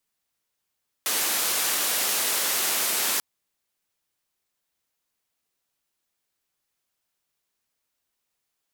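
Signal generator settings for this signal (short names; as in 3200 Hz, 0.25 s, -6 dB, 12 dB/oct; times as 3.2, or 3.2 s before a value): noise band 290–16000 Hz, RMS -25 dBFS 2.14 s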